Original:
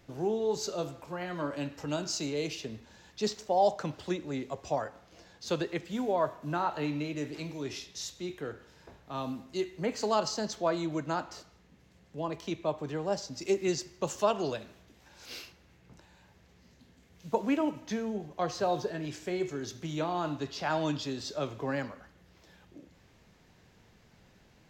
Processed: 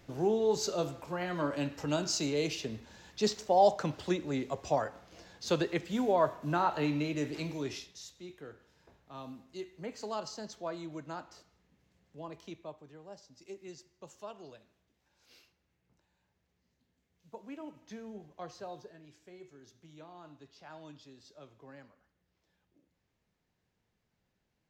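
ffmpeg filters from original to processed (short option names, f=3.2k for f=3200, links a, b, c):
-af "volume=9dB,afade=t=out:st=7.56:d=0.44:silence=0.281838,afade=t=out:st=12.42:d=0.44:silence=0.375837,afade=t=in:st=17.44:d=0.75:silence=0.421697,afade=t=out:st=18.19:d=0.84:silence=0.354813"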